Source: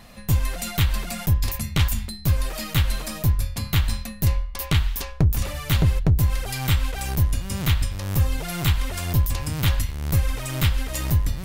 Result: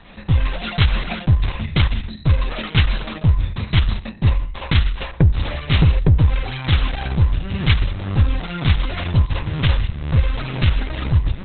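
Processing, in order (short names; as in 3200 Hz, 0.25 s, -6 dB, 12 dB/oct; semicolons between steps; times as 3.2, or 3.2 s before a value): gain +5 dB; Opus 6 kbps 48000 Hz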